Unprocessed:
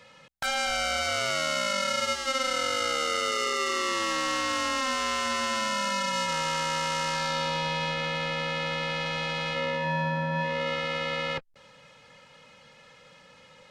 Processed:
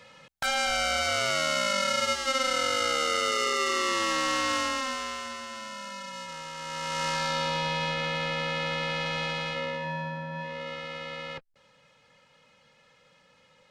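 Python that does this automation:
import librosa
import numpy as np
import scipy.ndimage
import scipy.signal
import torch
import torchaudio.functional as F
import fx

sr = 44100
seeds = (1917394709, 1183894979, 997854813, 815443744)

y = fx.gain(x, sr, db=fx.line((4.55, 1.0), (5.45, -11.0), (6.54, -11.0), (7.05, 0.0), (9.24, 0.0), (10.24, -7.5)))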